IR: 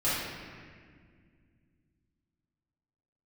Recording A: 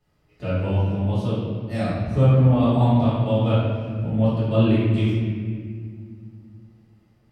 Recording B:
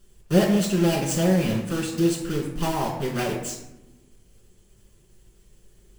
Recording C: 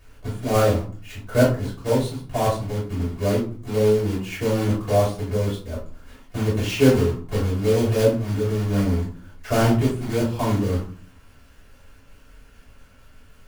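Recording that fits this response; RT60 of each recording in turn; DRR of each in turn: A; 1.9 s, 0.85 s, 0.45 s; -12.0 dB, -4.5 dB, -9.5 dB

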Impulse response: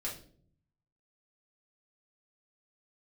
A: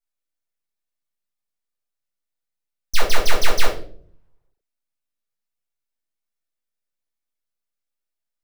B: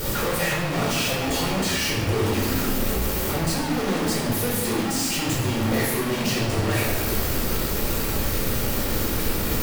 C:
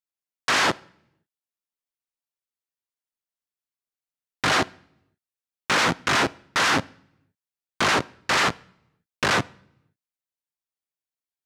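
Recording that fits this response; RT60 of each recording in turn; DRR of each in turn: A; no single decay rate, 1.4 s, no single decay rate; -5.0 dB, -5.0 dB, 17.0 dB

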